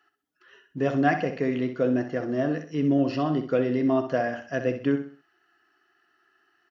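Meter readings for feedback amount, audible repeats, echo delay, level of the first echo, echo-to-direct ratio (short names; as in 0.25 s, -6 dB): 35%, 3, 64 ms, -9.5 dB, -9.0 dB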